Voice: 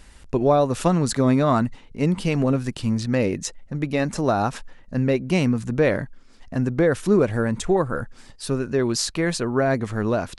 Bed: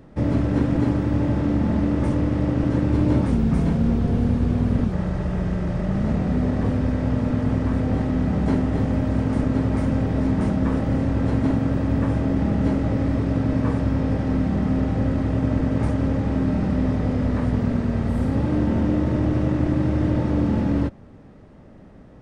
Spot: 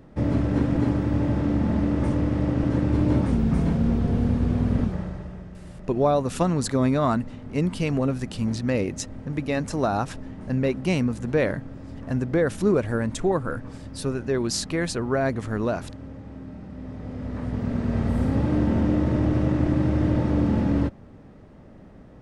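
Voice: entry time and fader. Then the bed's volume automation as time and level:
5.55 s, −3.0 dB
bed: 0:04.84 −2 dB
0:05.51 −17.5 dB
0:16.70 −17.5 dB
0:17.98 −1 dB

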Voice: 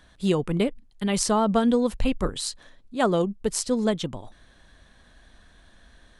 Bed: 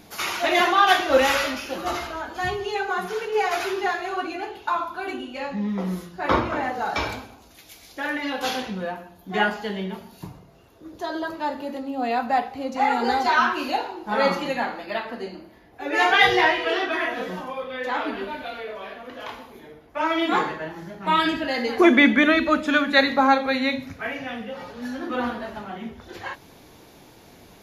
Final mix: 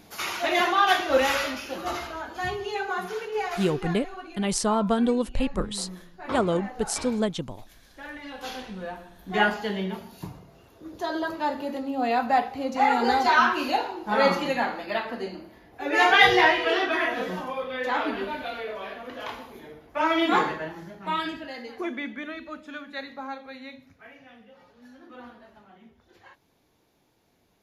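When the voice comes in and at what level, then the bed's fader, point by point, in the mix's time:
3.35 s, −2.0 dB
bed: 0:03.10 −3.5 dB
0:04.05 −12.5 dB
0:08.22 −12.5 dB
0:09.44 0 dB
0:20.52 0 dB
0:22.03 −18.5 dB

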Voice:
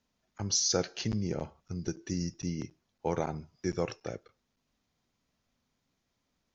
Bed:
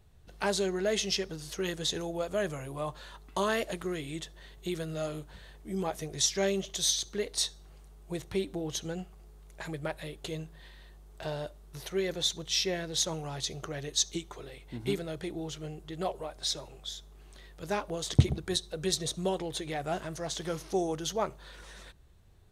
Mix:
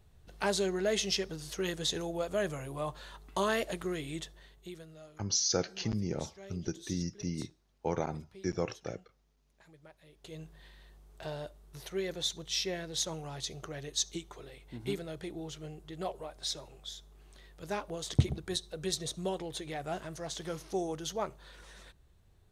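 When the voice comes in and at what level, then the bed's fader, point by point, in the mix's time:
4.80 s, −1.5 dB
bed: 0:04.22 −1 dB
0:05.17 −21 dB
0:10.01 −21 dB
0:10.46 −4 dB

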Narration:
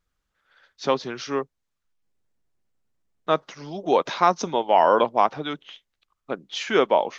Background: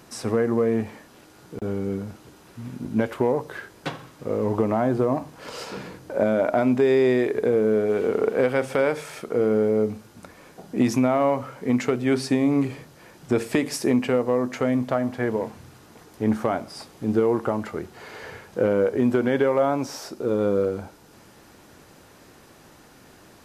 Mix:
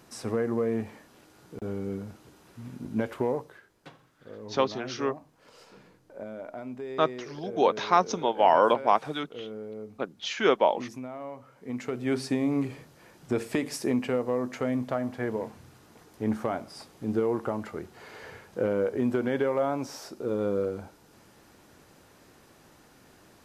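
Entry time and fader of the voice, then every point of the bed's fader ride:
3.70 s, −3.0 dB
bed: 0:03.35 −6 dB
0:03.61 −18.5 dB
0:11.43 −18.5 dB
0:12.10 −6 dB

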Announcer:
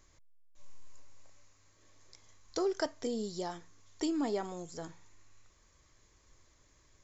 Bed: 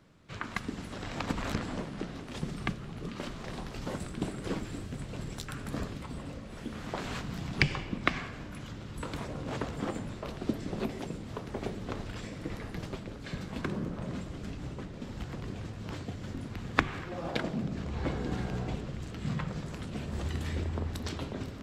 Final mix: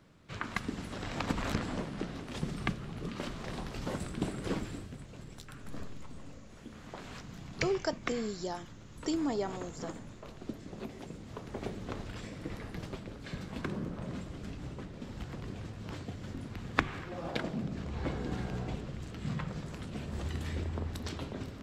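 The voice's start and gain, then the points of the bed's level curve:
5.05 s, +0.5 dB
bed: 0:04.63 0 dB
0:05.07 −9 dB
0:10.77 −9 dB
0:11.65 −2.5 dB

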